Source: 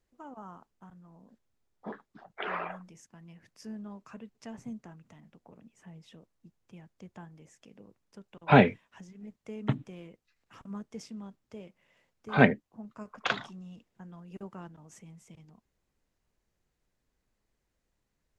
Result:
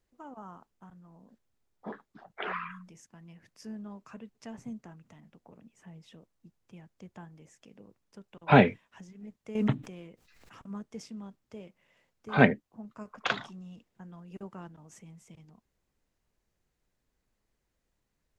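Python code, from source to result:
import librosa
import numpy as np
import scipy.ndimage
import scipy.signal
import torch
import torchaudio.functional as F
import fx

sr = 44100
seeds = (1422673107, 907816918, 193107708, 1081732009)

y = fx.spec_erase(x, sr, start_s=2.52, length_s=0.34, low_hz=250.0, high_hz=950.0)
y = fx.pre_swell(y, sr, db_per_s=44.0, at=(9.55, 10.65))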